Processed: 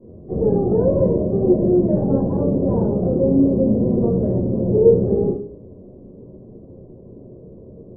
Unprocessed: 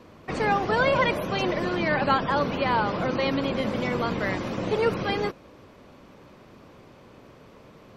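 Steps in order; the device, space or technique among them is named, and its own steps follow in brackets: next room (LPF 480 Hz 24 dB/oct; reverb RT60 0.45 s, pre-delay 10 ms, DRR -9 dB)

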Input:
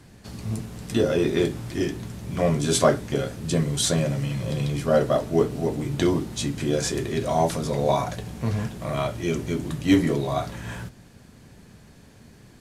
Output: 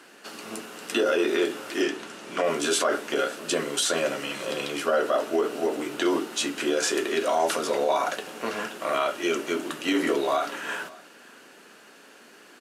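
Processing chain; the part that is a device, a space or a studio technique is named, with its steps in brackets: laptop speaker (HPF 310 Hz 24 dB/oct; bell 1400 Hz +9 dB 0.52 oct; bell 2800 Hz +9 dB 0.23 oct; limiter -17.5 dBFS, peak gain reduction 12.5 dB); 1.82–2.44 LPF 9100 Hz 12 dB/oct; echo 0.57 s -22.5 dB; gain +3 dB

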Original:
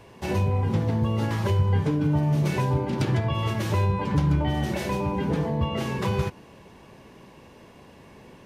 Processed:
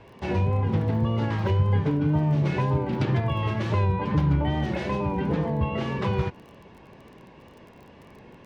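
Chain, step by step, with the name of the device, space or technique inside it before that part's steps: lo-fi chain (LPF 3600 Hz 12 dB/oct; wow and flutter; crackle 20/s -42 dBFS)

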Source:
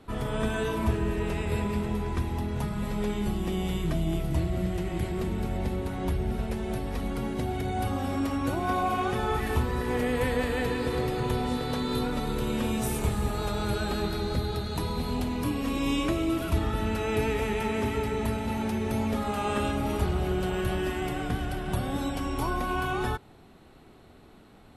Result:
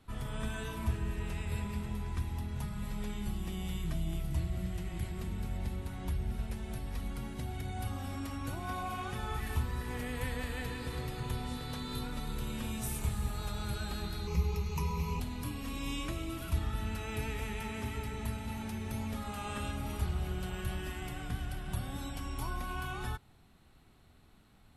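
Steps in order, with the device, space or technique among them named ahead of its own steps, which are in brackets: 14.27–15.2 ripple EQ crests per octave 0.78, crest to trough 17 dB; smiley-face EQ (low shelf 150 Hz +4.5 dB; bell 420 Hz -8.5 dB 1.8 oct; high shelf 5700 Hz +5 dB); gain -8 dB

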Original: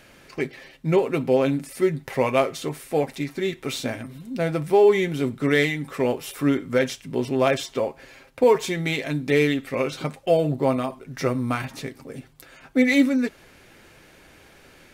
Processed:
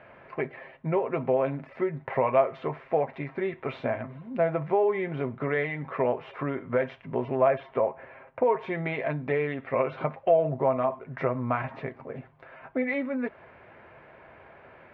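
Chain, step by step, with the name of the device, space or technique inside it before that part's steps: 7.37–8.44 tone controls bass 0 dB, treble -13 dB; bass amplifier (compressor 3:1, threshold -24 dBFS, peak gain reduction 9.5 dB; speaker cabinet 82–2200 Hz, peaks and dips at 180 Hz -5 dB, 290 Hz -8 dB, 650 Hz +8 dB, 1000 Hz +7 dB)

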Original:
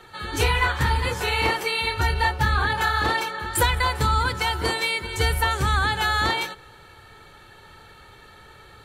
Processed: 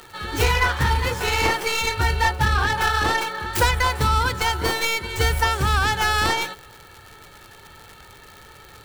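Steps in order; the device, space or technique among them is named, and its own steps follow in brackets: record under a worn stylus (tracing distortion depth 0.27 ms; crackle 150/s -33 dBFS; white noise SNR 40 dB); gain +1.5 dB

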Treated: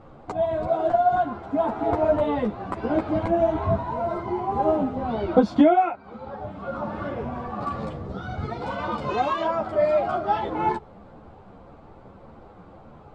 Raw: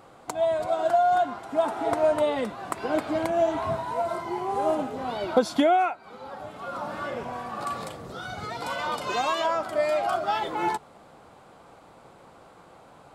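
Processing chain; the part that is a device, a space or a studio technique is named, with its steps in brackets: string-machine ensemble chorus (ensemble effect; LPF 5800 Hz 12 dB/oct); tilt -3.5 dB/oct; gain +3.5 dB

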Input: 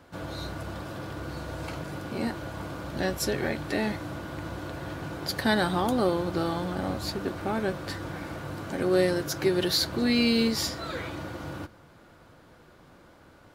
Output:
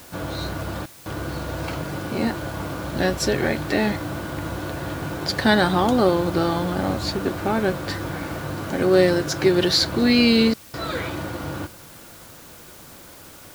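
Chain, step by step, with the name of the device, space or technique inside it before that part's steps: worn cassette (LPF 7600 Hz; wow and flutter 24 cents; level dips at 0.86/10.54, 0.196 s -24 dB; white noise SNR 23 dB); gain +7 dB

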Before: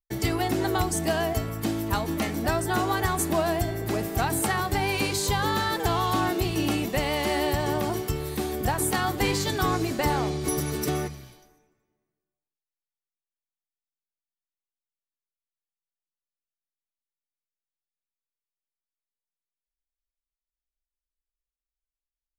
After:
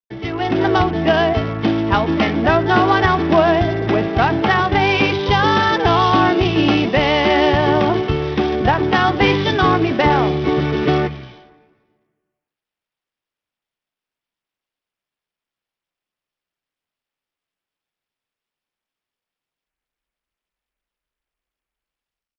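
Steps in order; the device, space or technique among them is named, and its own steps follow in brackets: Bluetooth headset (HPF 110 Hz 6 dB/oct; AGC gain up to 12.5 dB; downsampling 8000 Hz; gain +1 dB; SBC 64 kbps 44100 Hz)

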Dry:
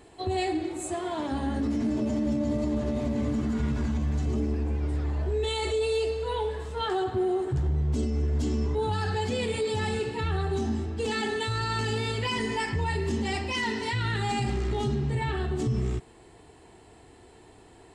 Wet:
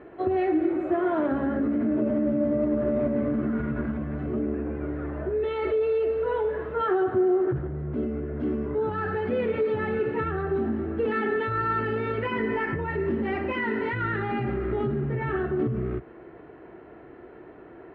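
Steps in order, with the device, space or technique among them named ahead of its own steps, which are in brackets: bass amplifier (compressor, threshold -28 dBFS, peak gain reduction 5.5 dB; speaker cabinet 62–2100 Hz, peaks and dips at 73 Hz -8 dB, 100 Hz -8 dB, 340 Hz +6 dB, 580 Hz +7 dB, 860 Hz -6 dB, 1400 Hz +7 dB); gain +5 dB

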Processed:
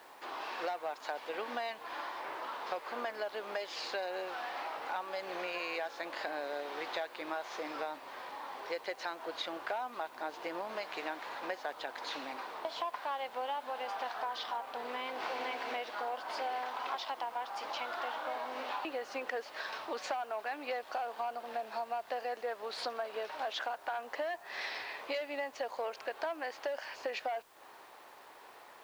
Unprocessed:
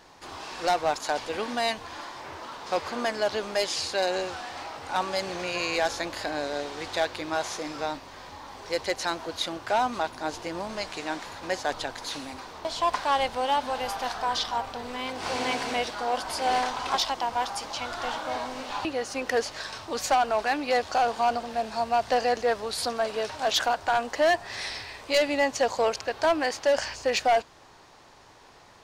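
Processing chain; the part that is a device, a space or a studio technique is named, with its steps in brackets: baby monitor (BPF 420–3000 Hz; compressor, threshold -35 dBFS, peak gain reduction 15.5 dB; white noise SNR 28 dB)

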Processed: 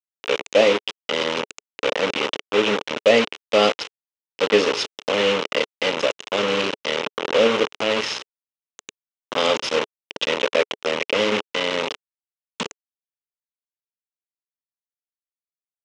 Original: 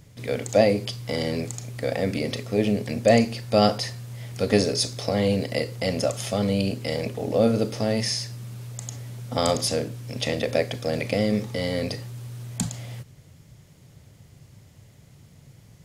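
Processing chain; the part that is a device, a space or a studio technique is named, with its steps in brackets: hand-held game console (bit-crush 4-bit; speaker cabinet 410–5000 Hz, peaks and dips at 430 Hz +3 dB, 700 Hz -9 dB, 1700 Hz -4 dB, 2900 Hz +5 dB, 4600 Hz -9 dB); gain +6 dB

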